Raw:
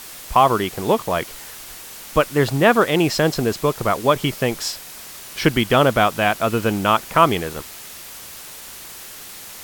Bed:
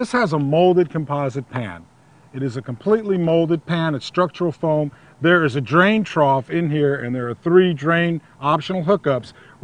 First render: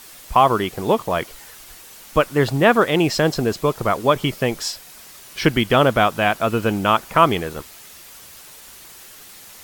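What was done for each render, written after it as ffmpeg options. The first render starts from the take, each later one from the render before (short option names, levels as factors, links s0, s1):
-af "afftdn=nr=6:nf=-38"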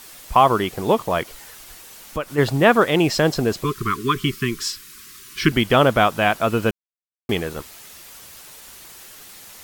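-filter_complex "[0:a]asplit=3[s0][s1][s2];[s0]afade=t=out:st=1.22:d=0.02[s3];[s1]acompressor=threshold=0.0398:ratio=2:attack=3.2:release=140:knee=1:detection=peak,afade=t=in:st=1.22:d=0.02,afade=t=out:st=2.37:d=0.02[s4];[s2]afade=t=in:st=2.37:d=0.02[s5];[s3][s4][s5]amix=inputs=3:normalize=0,asettb=1/sr,asplit=3[s6][s7][s8];[s6]atrim=end=3.644[s9];[s7]atrim=start=3.64:end=5.52,asetpts=PTS-STARTPTS,afade=t=in:d=0.004:c=qsin,afade=t=out:st=1.876:d=0.004:c=qsin,asuperstop=centerf=660:order=20:qfactor=1.1[s10];[s8]atrim=start=5.516[s11];[s9][s10]acrossfade=d=0.004:c1=hsin:c2=qsin[s12];[s12][s11]acrossfade=d=0.004:c1=qsin:c2=hsin,asplit=3[s13][s14][s15];[s13]atrim=end=6.71,asetpts=PTS-STARTPTS,afade=t=out:st=6.706:d=0.004:c=hsin[s16];[s14]atrim=start=6.71:end=7.29,asetpts=PTS-STARTPTS,volume=0[s17];[s15]atrim=start=7.29,asetpts=PTS-STARTPTS,afade=t=in:d=0.004:c=hsin[s18];[s16][s17][s18]concat=n=3:v=0:a=1"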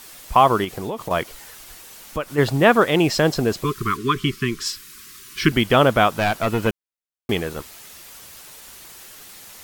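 -filter_complex "[0:a]asettb=1/sr,asplit=3[s0][s1][s2];[s0]atrim=end=0.644[s3];[s1]atrim=start=0.64:end=1.11,asetpts=PTS-STARTPTS,afade=t=in:d=0.004:c=qsin,afade=t=out:st=0.466:d=0.004:c=qsin,acompressor=threshold=0.0708:ratio=10:attack=3.2:release=140:knee=1:detection=peak[s4];[s2]atrim=start=1.106[s5];[s3][s4]acrossfade=d=0.004:c1=hsin:c2=qsin[s6];[s6][s5]acrossfade=d=0.004:c1=qsin:c2=hsin,asettb=1/sr,asplit=3[s7][s8][s9];[s7]atrim=end=3.974[s10];[s8]atrim=start=3.97:end=4.66,asetpts=PTS-STARTPTS,afade=t=in:d=0.004:c=qsin,afade=t=out:st=0.686:d=0.004:c=qsin,highshelf=f=10000:g=-8[s11];[s9]atrim=start=4.656[s12];[s10][s11]acrossfade=d=0.004:c1=hsin:c2=qsin[s13];[s13][s12]acrossfade=d=0.004:c1=qsin:c2=hsin,asettb=1/sr,asplit=3[s14][s15][s16];[s14]atrim=end=6.154[s17];[s15]atrim=start=6.15:end=6.67,asetpts=PTS-STARTPTS,afade=t=in:d=0.004:c=qsin,afade=t=out:st=0.516:d=0.004:c=qsin,aeval=exprs='clip(val(0),-1,0.106)':c=same[s18];[s16]atrim=start=6.666[s19];[s17][s18]acrossfade=d=0.004:c1=hsin:c2=qsin[s20];[s20][s19]acrossfade=d=0.004:c1=qsin:c2=hsin"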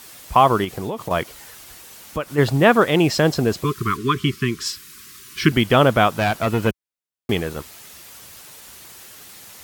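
-af "highpass=62,lowshelf=f=150:g=5"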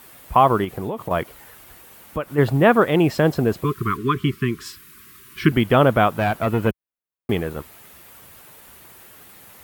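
-af "equalizer=f=5700:w=0.7:g=-12"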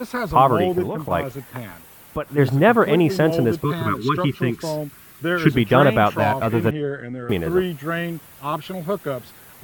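-filter_complex "[1:a]volume=0.422[s0];[0:a][s0]amix=inputs=2:normalize=0"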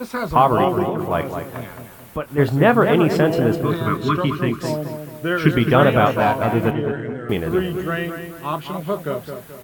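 -filter_complex "[0:a]asplit=2[s0][s1];[s1]adelay=26,volume=0.237[s2];[s0][s2]amix=inputs=2:normalize=0,asplit=2[s3][s4];[s4]adelay=216,lowpass=f=2100:p=1,volume=0.447,asplit=2[s5][s6];[s6]adelay=216,lowpass=f=2100:p=1,volume=0.44,asplit=2[s7][s8];[s8]adelay=216,lowpass=f=2100:p=1,volume=0.44,asplit=2[s9][s10];[s10]adelay=216,lowpass=f=2100:p=1,volume=0.44,asplit=2[s11][s12];[s12]adelay=216,lowpass=f=2100:p=1,volume=0.44[s13];[s5][s7][s9][s11][s13]amix=inputs=5:normalize=0[s14];[s3][s14]amix=inputs=2:normalize=0"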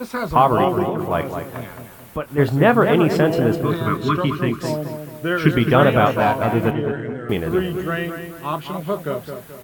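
-af anull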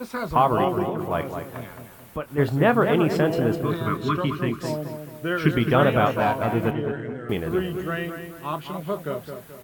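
-af "volume=0.596"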